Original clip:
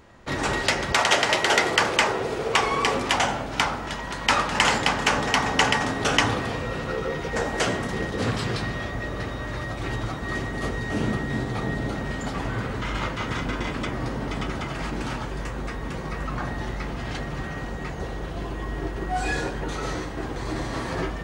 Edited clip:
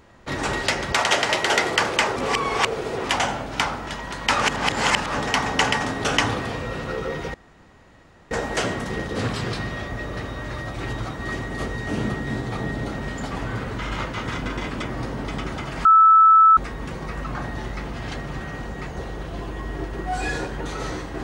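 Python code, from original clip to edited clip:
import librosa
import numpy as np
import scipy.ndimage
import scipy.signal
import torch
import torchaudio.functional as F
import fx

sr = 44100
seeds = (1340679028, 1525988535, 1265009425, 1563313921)

y = fx.edit(x, sr, fx.reverse_span(start_s=2.16, length_s=0.88),
    fx.reverse_span(start_s=4.41, length_s=0.73),
    fx.insert_room_tone(at_s=7.34, length_s=0.97),
    fx.bleep(start_s=14.88, length_s=0.72, hz=1310.0, db=-9.0), tone=tone)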